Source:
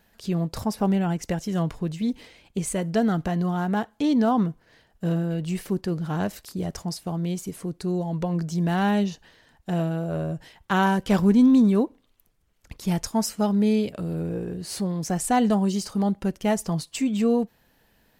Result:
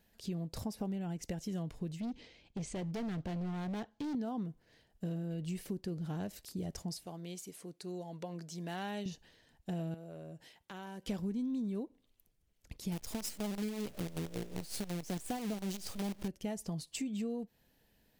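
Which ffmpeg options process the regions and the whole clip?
ffmpeg -i in.wav -filter_complex "[0:a]asettb=1/sr,asplit=3[link_01][link_02][link_03];[link_01]atrim=end=2.004[link_04];[link_02]atrim=start=2:end=4.15,asetpts=PTS-STARTPTS,afade=type=in:duration=0.004:curve=qsin,afade=type=out:start_time=2.146:duration=0.004:curve=qsin,lowpass=frequency=6300:width=0.5412,lowpass=frequency=6300:width=1.3066,volume=27dB,asoftclip=hard,volume=-27dB[link_05];[link_03]atrim=start=4.146[link_06];[link_04][link_05]acrossfade=duration=0.004:curve1=hsin:curve2=qsin[link_07];[link_07][link_06]acrossfade=duration=0.004:curve1=qsin:curve2=hsin,asettb=1/sr,asplit=3[link_08][link_09][link_10];[link_08]atrim=end=7.064[link_11];[link_09]atrim=start=7.06:end=9.06,asetpts=PTS-STARTPTS,afade=type=in:duration=0.004:curve=qsin,afade=type=out:start_time=1.996:duration=0.004:curve=qsin,highpass=frequency=680:poles=1,highshelf=frequency=9300:gain=-3.5[link_12];[link_10]atrim=start=9.056[link_13];[link_11][link_12]acrossfade=duration=0.004:curve1=hsin:curve2=qsin[link_14];[link_14][link_13]acrossfade=duration=0.004:curve1=qsin:curve2=hsin,asettb=1/sr,asplit=3[link_15][link_16][link_17];[link_15]atrim=end=9.944[link_18];[link_16]atrim=start=9.94:end=11.07,asetpts=PTS-STARTPTS,afade=type=in:duration=0.004:curve=qsin,afade=type=out:start_time=1.126:duration=0.004:curve=qsin,highpass=frequency=290:poles=1,acompressor=threshold=-39dB:ratio=2.5:attack=3.2:release=140:knee=1:detection=peak[link_19];[link_17]atrim=start=11.066[link_20];[link_18][link_19]acrossfade=duration=0.004:curve1=hsin:curve2=qsin[link_21];[link_21][link_20]acrossfade=duration=0.004:curve1=qsin:curve2=hsin,asettb=1/sr,asplit=3[link_22][link_23][link_24];[link_22]atrim=end=12.924[link_25];[link_23]atrim=start=12.92:end=16.28,asetpts=PTS-STARTPTS,afade=type=in:duration=0.004:curve=qsin,afade=type=out:start_time=3.356:duration=0.004:curve=qsin,aeval=exprs='val(0)+0.5*0.0473*sgn(val(0))':channel_layout=same,tremolo=f=5.4:d=0.67,acrusher=bits=5:dc=4:mix=0:aa=0.000001[link_26];[link_24]atrim=start=16.276[link_27];[link_25][link_26]acrossfade=duration=0.004:curve1=hsin:curve2=qsin[link_28];[link_28][link_27]acrossfade=duration=0.004:curve1=qsin:curve2=hsin,equalizer=frequency=1200:width_type=o:width=1.3:gain=-7.5,acompressor=threshold=-28dB:ratio=6,volume=-7dB" out.wav

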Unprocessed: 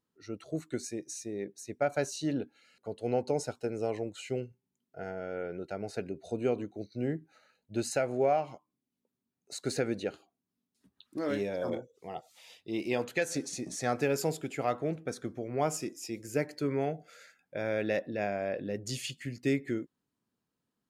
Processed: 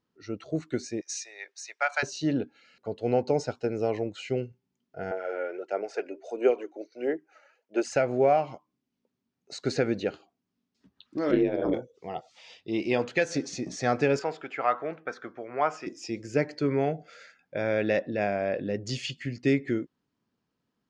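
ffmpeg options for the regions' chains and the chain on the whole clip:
ffmpeg -i in.wav -filter_complex "[0:a]asettb=1/sr,asplit=3[link_01][link_02][link_03];[link_01]atrim=end=1.014[link_04];[link_02]atrim=start=1.01:end=2.03,asetpts=PTS-STARTPTS,afade=type=in:duration=0.004:curve=qsin,afade=type=out:start_time=1.016:duration=0.004:curve=qsin,highpass=frequency=950:width=0.5412,highpass=frequency=950:width=1.3066,acontrast=71[link_05];[link_03]atrim=start=2.026[link_06];[link_04][link_05]acrossfade=duration=0.004:curve1=hsin:curve2=qsin[link_07];[link_07][link_06]acrossfade=duration=0.004:curve1=qsin:curve2=hsin,asettb=1/sr,asplit=3[link_08][link_09][link_10];[link_08]atrim=end=5.114[link_11];[link_09]atrim=start=5.11:end=7.96,asetpts=PTS-STARTPTS,afade=type=in:duration=0.004:curve=qsin,afade=type=out:start_time=2.846:duration=0.004:curve=qsin,highpass=frequency=380:width=0.5412,highpass=frequency=380:width=1.3066,equalizer=frequency=4000:width=4.2:gain=-14,aphaser=in_gain=1:out_gain=1:delay=3.6:decay=0.51:speed=1.5:type=sinusoidal[link_12];[link_10]atrim=start=7.956[link_13];[link_11][link_12]acrossfade=duration=0.004:curve1=hsin:curve2=qsin[link_14];[link_14][link_13]acrossfade=duration=0.004:curve1=qsin:curve2=hsin,asettb=1/sr,asplit=3[link_15][link_16][link_17];[link_15]atrim=end=11.314[link_18];[link_16]atrim=start=11.31:end=11.74,asetpts=PTS-STARTPTS,afade=type=in:duration=0.004:curve=qsin,afade=type=out:start_time=0.426:duration=0.004:curve=qsin,lowpass=frequency=3900:width=0.5412,lowpass=frequency=3900:width=1.3066,aeval=exprs='val(0)*sin(2*PI*55*n/s)':channel_layout=same,equalizer=frequency=330:width=2.9:gain=13.5[link_19];[link_17]atrim=start=11.736[link_20];[link_18][link_19]acrossfade=duration=0.004:curve1=hsin:curve2=qsin[link_21];[link_21][link_20]acrossfade=duration=0.004:curve1=qsin:curve2=hsin,asettb=1/sr,asplit=3[link_22][link_23][link_24];[link_22]atrim=end=14.194[link_25];[link_23]atrim=start=14.19:end=15.87,asetpts=PTS-STARTPTS,afade=type=in:duration=0.004:curve=qsin,afade=type=out:start_time=1.676:duration=0.004:curve=qsin,acontrast=58,bandpass=frequency=1300:width_type=q:width=1.5[link_26];[link_24]atrim=start=15.866[link_27];[link_25][link_26]acrossfade=duration=0.004:curve1=hsin:curve2=qsin[link_28];[link_28][link_27]acrossfade=duration=0.004:curve1=qsin:curve2=hsin,lowpass=frequency=5800:width=0.5412,lowpass=frequency=5800:width=1.3066,equalizer=frequency=3900:width=5.6:gain=-3,volume=5dB" out.wav

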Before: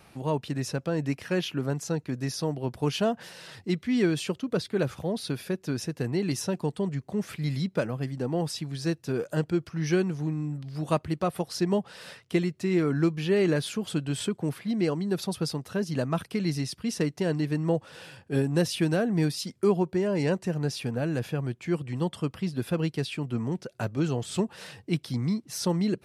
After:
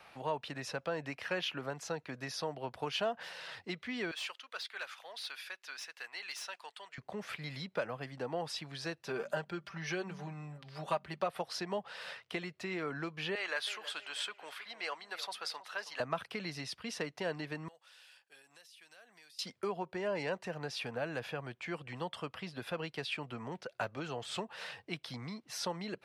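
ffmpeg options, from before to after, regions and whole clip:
ffmpeg -i in.wav -filter_complex "[0:a]asettb=1/sr,asplit=3[link_01][link_02][link_03];[link_01]atrim=end=4.114[link_04];[link_02]atrim=start=4.11:end=6.98,asetpts=PTS-STARTPTS,afade=type=in:duration=0.004:curve=qsin,afade=type=out:start_time=2.866:duration=0.004:curve=qsin,highpass=1500,asoftclip=type=hard:threshold=-34dB[link_05];[link_03]atrim=start=6.976[link_06];[link_04][link_05]acrossfade=duration=0.004:curve1=hsin:curve2=qsin[link_07];[link_07][link_06]acrossfade=duration=0.004:curve1=qsin:curve2=hsin,asettb=1/sr,asplit=3[link_08][link_09][link_10];[link_08]atrim=end=9.014[link_11];[link_09]atrim=start=9.01:end=11.26,asetpts=PTS-STARTPTS,afade=type=in:duration=0.004:curve=qsin,afade=type=out:start_time=2.246:duration=0.004:curve=qsin,aecho=1:1:5.1:0.61,atrim=end_sample=99225,bandreject=frequency=46.66:width_type=h:width=4,bandreject=frequency=93.32:width_type=h:width=4,bandreject=frequency=139.98:width_type=h:width=4,bandreject=frequency=186.64:width_type=h:width=4,bandreject=frequency=233.3:width_type=h:width=4[link_12];[link_10]atrim=start=11.256[link_13];[link_11][link_12]acrossfade=duration=0.004:curve1=hsin:curve2=qsin[link_14];[link_14][link_13]acrossfade=duration=0.004:curve1=qsin:curve2=hsin,asettb=1/sr,asplit=3[link_15][link_16][link_17];[link_15]atrim=end=13.354[link_18];[link_16]atrim=start=13.35:end=16,asetpts=PTS-STARTPTS,afade=type=in:duration=0.004:curve=qsin,afade=type=out:start_time=2.646:duration=0.004:curve=qsin,highpass=950,asplit=2[link_19][link_20];[link_20]adelay=320,lowpass=frequency=2700:poles=1,volume=-13dB,asplit=2[link_21][link_22];[link_22]adelay=320,lowpass=frequency=2700:poles=1,volume=0.39,asplit=2[link_23][link_24];[link_24]adelay=320,lowpass=frequency=2700:poles=1,volume=0.39,asplit=2[link_25][link_26];[link_26]adelay=320,lowpass=frequency=2700:poles=1,volume=0.39[link_27];[link_19][link_21][link_23][link_25][link_27]amix=inputs=5:normalize=0,atrim=end_sample=116865[link_28];[link_17]atrim=start=15.996[link_29];[link_18][link_28]acrossfade=duration=0.004:curve1=hsin:curve2=qsin[link_30];[link_30][link_29]acrossfade=duration=0.004:curve1=qsin:curve2=hsin,asettb=1/sr,asplit=3[link_31][link_32][link_33];[link_31]atrim=end=17.684[link_34];[link_32]atrim=start=17.68:end=19.39,asetpts=PTS-STARTPTS,afade=type=in:duration=0.004:curve=qsin,afade=type=out:start_time=1.706:duration=0.004:curve=qsin,aderivative,acompressor=threshold=-53dB:ratio=5:attack=3.2:release=140:knee=1:detection=peak[link_35];[link_33]atrim=start=19.386[link_36];[link_34][link_35]acrossfade=duration=0.004:curve1=hsin:curve2=qsin[link_37];[link_37][link_36]acrossfade=duration=0.004:curve1=qsin:curve2=hsin,equalizer=frequency=360:width=1.8:gain=-5.5,acompressor=threshold=-28dB:ratio=6,acrossover=split=420 4400:gain=0.158 1 0.224[link_38][link_39][link_40];[link_38][link_39][link_40]amix=inputs=3:normalize=0,volume=1.5dB" out.wav

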